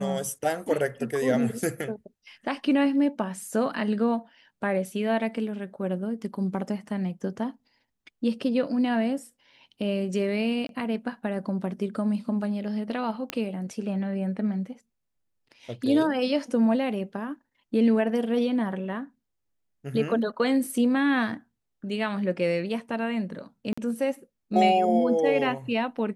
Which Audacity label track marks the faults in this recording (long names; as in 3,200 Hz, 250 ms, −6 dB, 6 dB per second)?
10.670000	10.690000	drop-out 22 ms
13.300000	13.300000	click −12 dBFS
23.730000	23.770000	drop-out 45 ms